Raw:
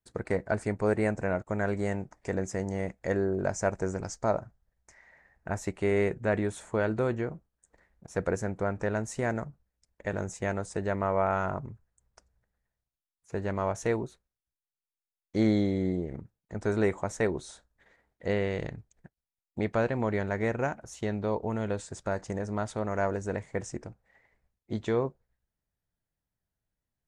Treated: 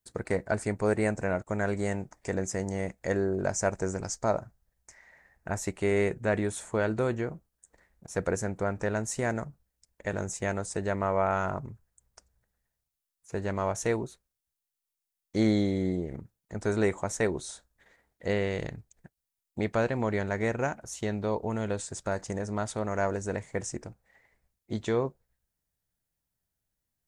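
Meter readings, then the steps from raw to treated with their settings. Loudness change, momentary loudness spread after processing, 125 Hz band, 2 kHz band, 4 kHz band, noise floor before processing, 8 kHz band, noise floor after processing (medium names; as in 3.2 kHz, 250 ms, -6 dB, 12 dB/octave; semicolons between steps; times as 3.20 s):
+0.5 dB, 11 LU, 0.0 dB, +1.0 dB, +3.5 dB, under -85 dBFS, +6.5 dB, under -85 dBFS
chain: treble shelf 5 kHz +9.5 dB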